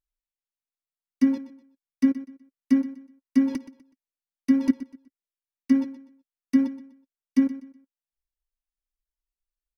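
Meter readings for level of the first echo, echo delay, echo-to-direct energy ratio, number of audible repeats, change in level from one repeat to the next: -15.5 dB, 0.124 s, -15.0 dB, 2, -10.5 dB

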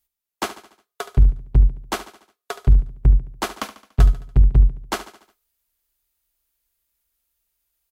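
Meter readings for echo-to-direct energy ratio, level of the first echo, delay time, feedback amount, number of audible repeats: -12.5 dB, -13.5 dB, 72 ms, 50%, 4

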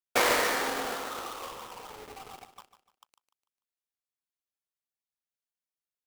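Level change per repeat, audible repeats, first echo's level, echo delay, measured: -9.0 dB, 3, -12.0 dB, 0.148 s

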